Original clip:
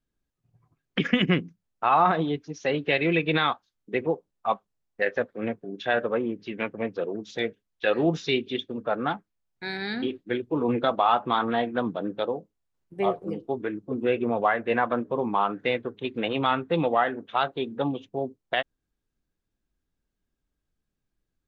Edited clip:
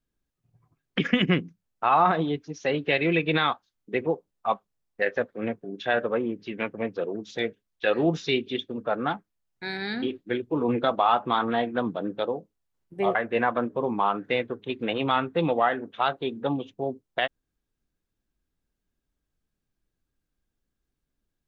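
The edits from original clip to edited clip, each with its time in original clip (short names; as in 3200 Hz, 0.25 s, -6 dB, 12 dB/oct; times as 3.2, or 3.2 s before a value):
13.15–14.5 cut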